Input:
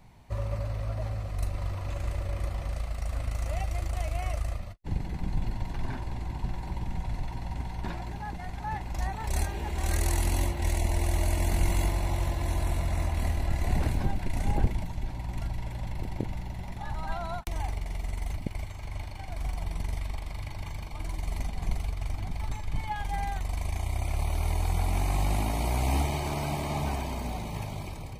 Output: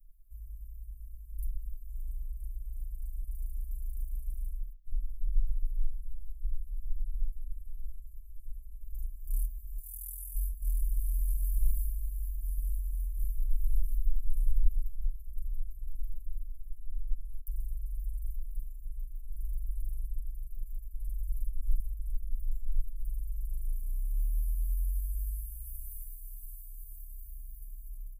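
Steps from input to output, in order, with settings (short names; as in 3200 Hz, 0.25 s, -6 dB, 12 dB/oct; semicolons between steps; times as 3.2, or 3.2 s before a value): 9.78–10.35 HPF 100 Hz 12 dB/oct; 16.45–17.27 high shelf 9200 Hz -5.5 dB; inverse Chebyshev band-stop 170–3800 Hz, stop band 70 dB; comb 6.6 ms, depth 82%; outdoor echo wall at 28 m, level -23 dB; gain +2 dB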